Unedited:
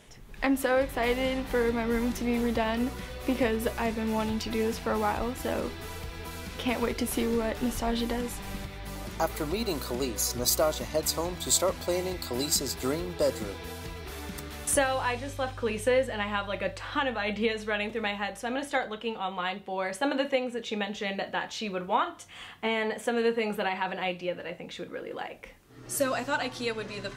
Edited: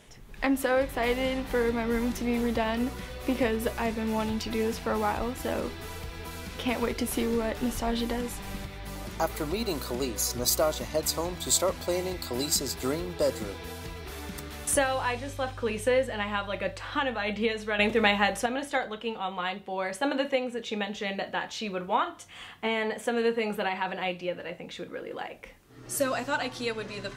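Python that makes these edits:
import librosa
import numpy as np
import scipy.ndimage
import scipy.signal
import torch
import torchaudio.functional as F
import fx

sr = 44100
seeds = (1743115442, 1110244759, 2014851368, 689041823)

y = fx.edit(x, sr, fx.clip_gain(start_s=17.79, length_s=0.67, db=8.0), tone=tone)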